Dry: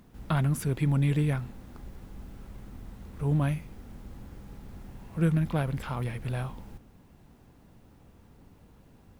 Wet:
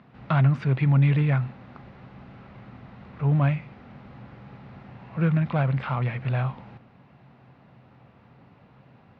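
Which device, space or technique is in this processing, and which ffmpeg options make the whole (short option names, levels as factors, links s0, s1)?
overdrive pedal into a guitar cabinet: -filter_complex "[0:a]asplit=2[s0][s1];[s1]highpass=f=720:p=1,volume=3.98,asoftclip=type=tanh:threshold=0.168[s2];[s0][s2]amix=inputs=2:normalize=0,lowpass=f=2400:p=1,volume=0.501,highpass=98,equalizer=f=130:t=q:w=4:g=10,equalizer=f=320:t=q:w=4:g=-6,equalizer=f=450:t=q:w=4:g=-5,equalizer=f=930:t=q:w=4:g=-3,equalizer=f=1600:t=q:w=4:g=-3,equalizer=f=3300:t=q:w=4:g=-5,lowpass=f=3800:w=0.5412,lowpass=f=3800:w=1.3066,volume=1.58"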